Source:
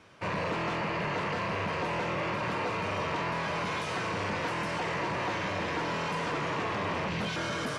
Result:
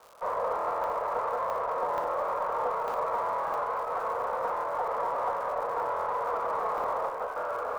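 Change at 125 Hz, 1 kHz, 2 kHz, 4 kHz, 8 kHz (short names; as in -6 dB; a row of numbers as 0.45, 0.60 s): -20.0 dB, +4.5 dB, -8.5 dB, under -15 dB, under -10 dB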